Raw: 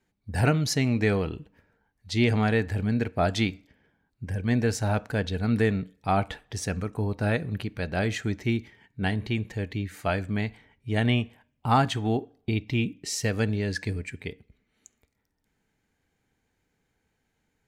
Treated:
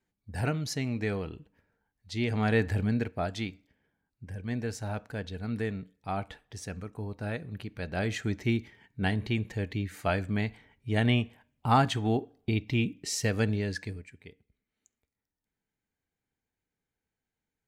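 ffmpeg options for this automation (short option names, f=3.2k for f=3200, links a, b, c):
-af "volume=8dB,afade=t=in:st=2.3:d=0.36:silence=0.398107,afade=t=out:st=2.66:d=0.63:silence=0.334965,afade=t=in:st=7.49:d=0.94:silence=0.421697,afade=t=out:st=13.52:d=0.57:silence=0.237137"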